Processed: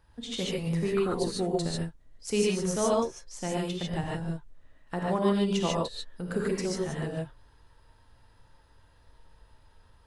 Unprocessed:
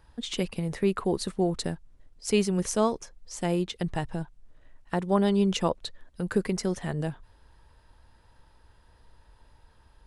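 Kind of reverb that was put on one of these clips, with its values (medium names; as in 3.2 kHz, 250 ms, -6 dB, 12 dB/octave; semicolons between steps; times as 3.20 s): gated-style reverb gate 170 ms rising, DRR -3.5 dB; trim -5.5 dB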